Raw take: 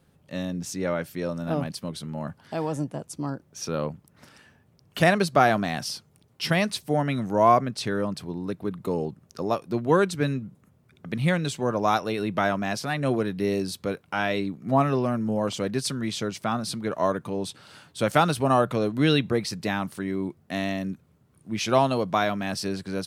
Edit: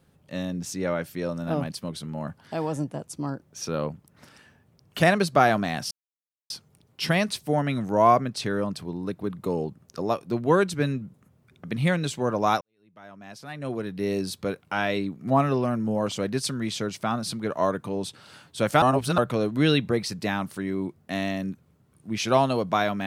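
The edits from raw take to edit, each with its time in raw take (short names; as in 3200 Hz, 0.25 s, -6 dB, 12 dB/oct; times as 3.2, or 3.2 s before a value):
5.91 insert silence 0.59 s
12.02–13.64 fade in quadratic
18.23–18.59 reverse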